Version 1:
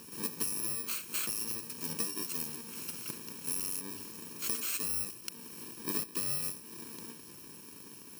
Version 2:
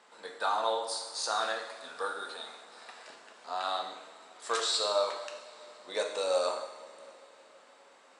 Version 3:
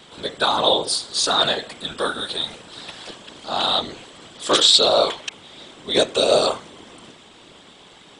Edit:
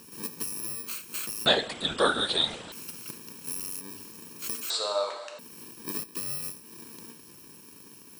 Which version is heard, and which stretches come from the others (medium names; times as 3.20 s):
1
1.46–2.72 s: from 3
4.70–5.39 s: from 2